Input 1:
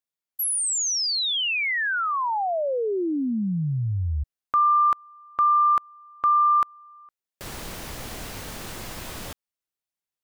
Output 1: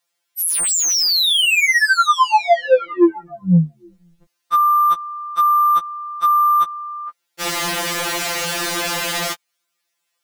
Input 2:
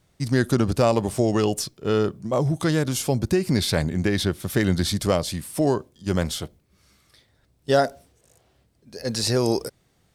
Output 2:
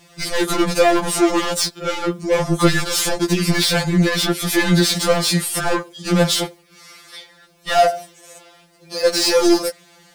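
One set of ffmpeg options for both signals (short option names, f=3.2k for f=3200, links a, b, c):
-filter_complex "[0:a]asplit=2[a][b];[b]highpass=f=720:p=1,volume=29dB,asoftclip=type=tanh:threshold=-6.5dB[c];[a][c]amix=inputs=2:normalize=0,lowpass=f=6.2k:p=1,volume=-6dB,afftfilt=real='re*2.83*eq(mod(b,8),0)':imag='im*2.83*eq(mod(b,8),0)':win_size=2048:overlap=0.75"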